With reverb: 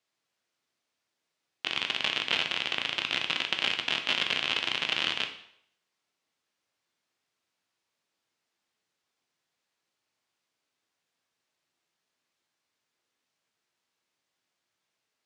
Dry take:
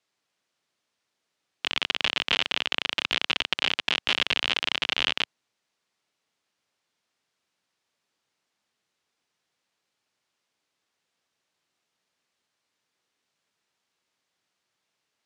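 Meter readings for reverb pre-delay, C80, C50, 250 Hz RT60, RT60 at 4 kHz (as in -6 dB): 5 ms, 13.0 dB, 9.5 dB, 0.60 s, 0.60 s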